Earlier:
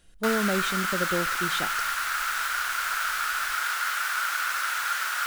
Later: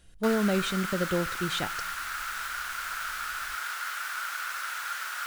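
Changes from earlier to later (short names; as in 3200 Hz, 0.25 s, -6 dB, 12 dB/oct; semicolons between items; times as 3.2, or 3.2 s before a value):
background -6.5 dB; master: add bell 94 Hz +10 dB 1 oct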